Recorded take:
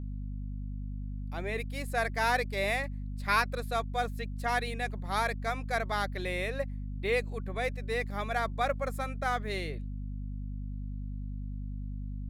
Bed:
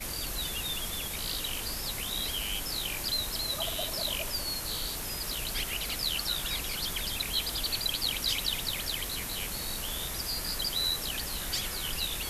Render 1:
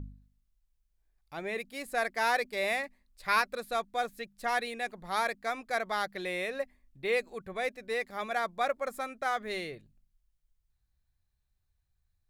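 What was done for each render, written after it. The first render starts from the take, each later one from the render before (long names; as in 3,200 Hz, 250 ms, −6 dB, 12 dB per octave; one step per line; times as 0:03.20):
hum removal 50 Hz, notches 5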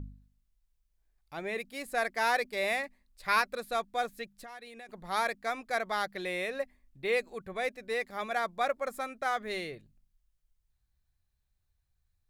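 0:04.37–0:04.89: downward compressor 5 to 1, threshold −45 dBFS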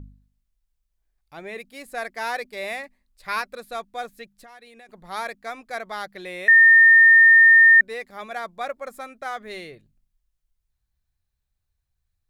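0:06.48–0:07.81: beep over 1,820 Hz −8.5 dBFS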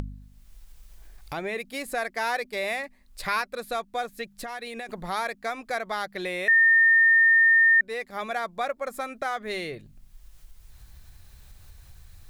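upward compression, threshold −24 dBFS
brickwall limiter −14.5 dBFS, peak gain reduction 6 dB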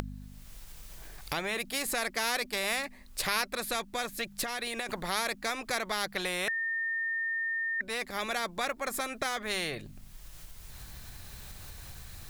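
every bin compressed towards the loudest bin 2 to 1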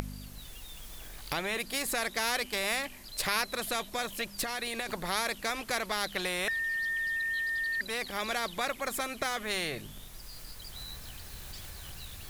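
mix in bed −16 dB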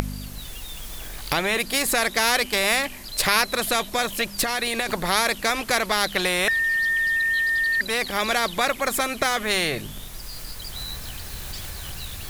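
level +10 dB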